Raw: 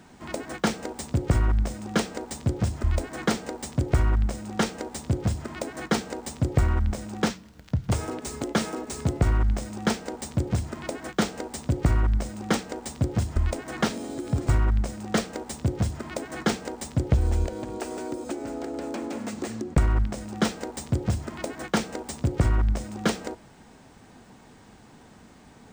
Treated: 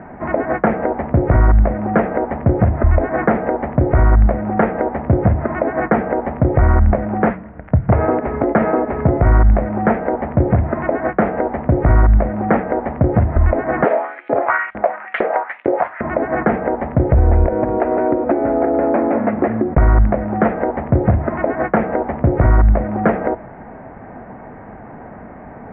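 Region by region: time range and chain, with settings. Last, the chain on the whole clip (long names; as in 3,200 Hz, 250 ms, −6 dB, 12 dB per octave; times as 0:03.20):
0:13.84–0:16.01: high-shelf EQ 3,200 Hz +9 dB + auto-filter high-pass saw up 2.2 Hz 370–3,700 Hz
whole clip: Butterworth low-pass 2,100 Hz 48 dB per octave; parametric band 650 Hz +9 dB 0.64 octaves; boost into a limiter +17 dB; level −3 dB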